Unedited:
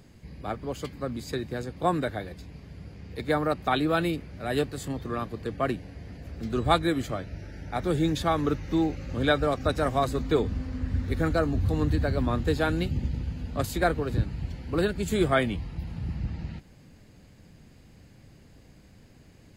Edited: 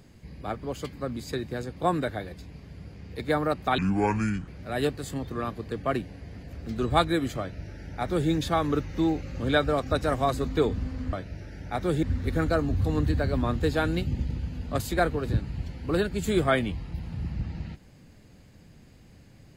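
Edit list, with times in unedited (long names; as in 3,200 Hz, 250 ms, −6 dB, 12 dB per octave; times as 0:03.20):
0:03.78–0:04.22: play speed 63%
0:07.14–0:08.04: duplicate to 0:10.87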